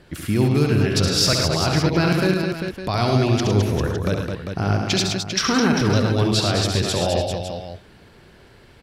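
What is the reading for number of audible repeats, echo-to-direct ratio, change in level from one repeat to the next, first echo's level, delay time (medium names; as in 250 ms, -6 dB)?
5, -0.5 dB, no regular repeats, -6.0 dB, 69 ms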